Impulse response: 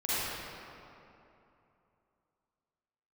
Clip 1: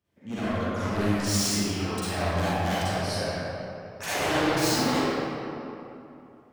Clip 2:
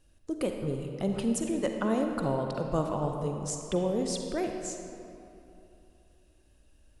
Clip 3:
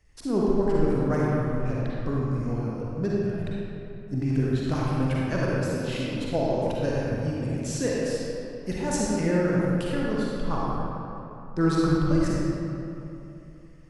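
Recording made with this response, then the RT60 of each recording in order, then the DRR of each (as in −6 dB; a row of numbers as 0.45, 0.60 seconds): 1; 2.9, 2.9, 2.9 seconds; −12.5, 3.5, −5.5 decibels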